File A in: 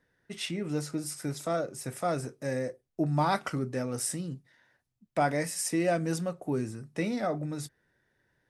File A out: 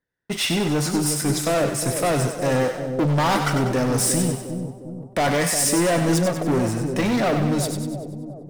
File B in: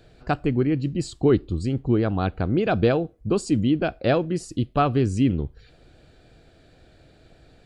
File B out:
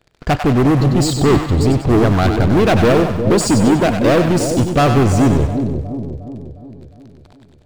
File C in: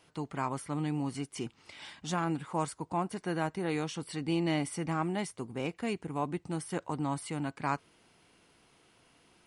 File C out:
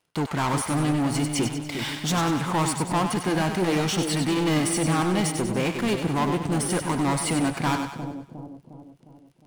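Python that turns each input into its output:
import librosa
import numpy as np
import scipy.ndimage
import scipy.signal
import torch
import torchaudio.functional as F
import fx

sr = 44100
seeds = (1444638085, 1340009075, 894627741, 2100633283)

y = fx.leveller(x, sr, passes=5)
y = fx.echo_split(y, sr, split_hz=680.0, low_ms=357, high_ms=96, feedback_pct=52, wet_db=-6.5)
y = y * librosa.db_to_amplitude(-2.5)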